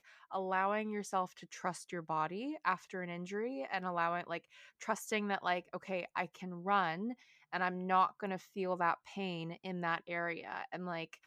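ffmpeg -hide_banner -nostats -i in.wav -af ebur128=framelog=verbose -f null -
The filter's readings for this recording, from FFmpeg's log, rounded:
Integrated loudness:
  I:         -37.7 LUFS
  Threshold: -47.7 LUFS
Loudness range:
  LRA:         2.8 LU
  Threshold: -57.5 LUFS
  LRA low:   -38.9 LUFS
  LRA high:  -36.1 LUFS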